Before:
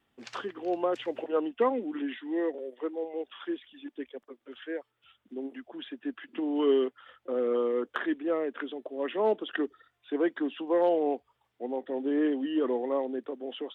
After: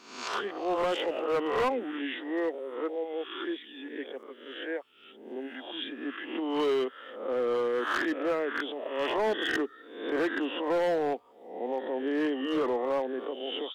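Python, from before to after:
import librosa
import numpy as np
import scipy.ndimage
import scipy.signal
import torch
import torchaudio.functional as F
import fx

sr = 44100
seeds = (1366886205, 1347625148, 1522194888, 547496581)

y = fx.spec_swells(x, sr, rise_s=0.69)
y = fx.low_shelf(y, sr, hz=330.0, db=-12.0)
y = np.clip(y, -10.0 ** (-27.5 / 20.0), 10.0 ** (-27.5 / 20.0))
y = y * librosa.db_to_amplitude(4.0)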